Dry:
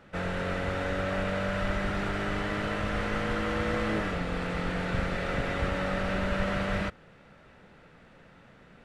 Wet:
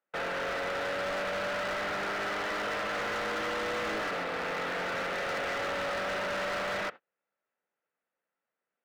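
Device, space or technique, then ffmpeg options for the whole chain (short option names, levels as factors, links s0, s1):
walkie-talkie: -af "highpass=460,lowpass=3000,asoftclip=type=hard:threshold=0.0168,agate=range=0.0158:threshold=0.00447:ratio=16:detection=peak,volume=1.78"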